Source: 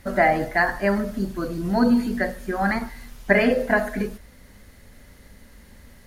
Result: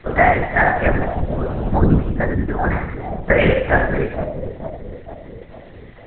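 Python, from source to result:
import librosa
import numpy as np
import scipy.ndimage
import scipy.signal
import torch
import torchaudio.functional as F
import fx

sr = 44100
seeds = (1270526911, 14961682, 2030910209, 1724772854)

y = fx.peak_eq(x, sr, hz=2800.0, db=-4.5, octaves=2.8, at=(1.77, 3.39))
y = fx.echo_split(y, sr, split_hz=880.0, low_ms=453, high_ms=88, feedback_pct=52, wet_db=-7.0)
y = fx.lpc_vocoder(y, sr, seeds[0], excitation='whisper', order=8)
y = y * librosa.db_to_amplitude(4.5)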